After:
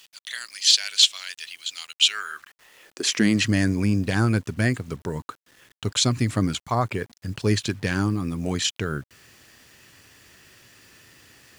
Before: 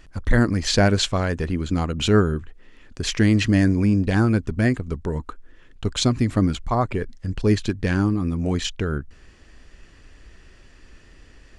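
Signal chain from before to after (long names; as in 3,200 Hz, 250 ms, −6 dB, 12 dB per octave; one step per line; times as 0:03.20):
spectral tilt +2.5 dB per octave
in parallel at −1 dB: brickwall limiter −13 dBFS, peak gain reduction 8.5 dB
on the sum: high-pass filter sweep 3,200 Hz → 110 Hz, 0:02.02–0:03.47
bit-depth reduction 8 bits, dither none
level −6 dB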